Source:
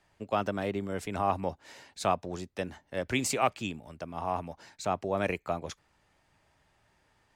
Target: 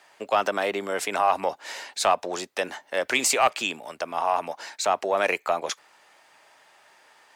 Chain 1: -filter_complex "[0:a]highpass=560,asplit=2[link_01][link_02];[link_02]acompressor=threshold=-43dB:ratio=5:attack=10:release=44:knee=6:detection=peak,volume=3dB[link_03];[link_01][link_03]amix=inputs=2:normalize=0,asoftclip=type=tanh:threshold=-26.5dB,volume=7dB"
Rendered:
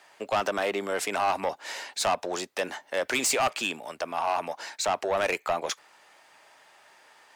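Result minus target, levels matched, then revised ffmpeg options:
soft clipping: distortion +12 dB
-filter_complex "[0:a]highpass=560,asplit=2[link_01][link_02];[link_02]acompressor=threshold=-43dB:ratio=5:attack=10:release=44:knee=6:detection=peak,volume=3dB[link_03];[link_01][link_03]amix=inputs=2:normalize=0,asoftclip=type=tanh:threshold=-15.5dB,volume=7dB"

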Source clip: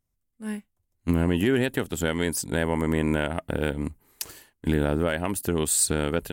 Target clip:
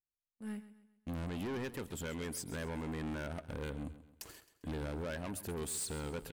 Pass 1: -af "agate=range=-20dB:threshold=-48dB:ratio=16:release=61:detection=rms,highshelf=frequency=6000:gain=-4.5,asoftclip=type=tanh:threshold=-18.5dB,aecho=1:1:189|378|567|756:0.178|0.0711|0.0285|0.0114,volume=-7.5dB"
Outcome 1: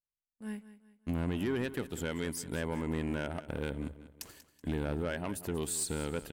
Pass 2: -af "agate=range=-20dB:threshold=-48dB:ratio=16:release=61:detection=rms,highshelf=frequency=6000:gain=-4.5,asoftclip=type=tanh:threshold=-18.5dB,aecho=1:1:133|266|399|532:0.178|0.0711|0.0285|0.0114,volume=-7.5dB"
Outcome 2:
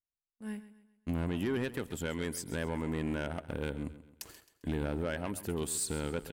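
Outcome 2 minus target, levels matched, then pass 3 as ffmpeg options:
soft clipping: distortion −9 dB
-af "agate=range=-20dB:threshold=-48dB:ratio=16:release=61:detection=rms,highshelf=frequency=6000:gain=-4.5,asoftclip=type=tanh:threshold=-28.5dB,aecho=1:1:133|266|399|532:0.178|0.0711|0.0285|0.0114,volume=-7.5dB"

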